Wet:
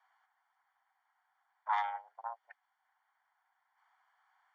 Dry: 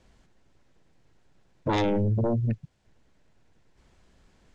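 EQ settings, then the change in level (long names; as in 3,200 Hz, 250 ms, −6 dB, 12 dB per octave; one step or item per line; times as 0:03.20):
Savitzky-Golay smoothing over 41 samples
Chebyshev high-pass filter 760 Hz, order 6
0.0 dB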